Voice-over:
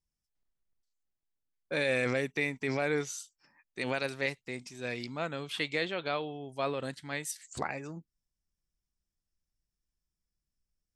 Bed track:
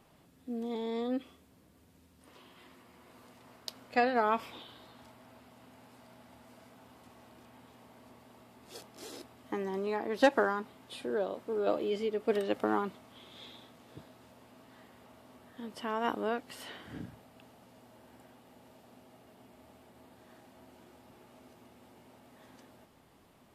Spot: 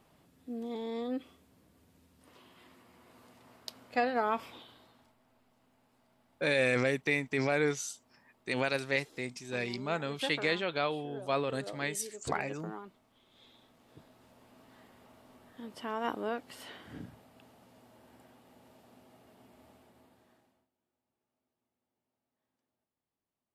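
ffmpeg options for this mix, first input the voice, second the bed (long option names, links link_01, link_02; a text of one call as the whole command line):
ffmpeg -i stem1.wav -i stem2.wav -filter_complex "[0:a]adelay=4700,volume=1.5dB[link_01];[1:a]volume=9.5dB,afade=type=out:start_time=4.49:duration=0.66:silence=0.266073,afade=type=in:start_time=13.24:duration=1.4:silence=0.266073,afade=type=out:start_time=19.67:duration=1.02:silence=0.0375837[link_02];[link_01][link_02]amix=inputs=2:normalize=0" out.wav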